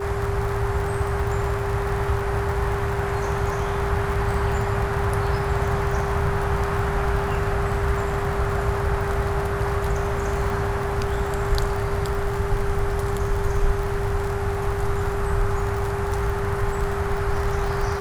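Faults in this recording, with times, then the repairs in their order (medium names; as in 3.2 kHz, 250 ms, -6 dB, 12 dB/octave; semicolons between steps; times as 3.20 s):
crackle 47 per s -27 dBFS
whine 400 Hz -27 dBFS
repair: de-click; band-stop 400 Hz, Q 30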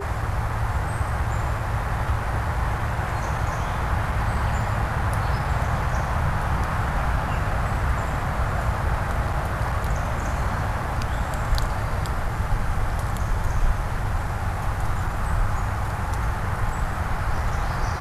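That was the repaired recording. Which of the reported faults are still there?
nothing left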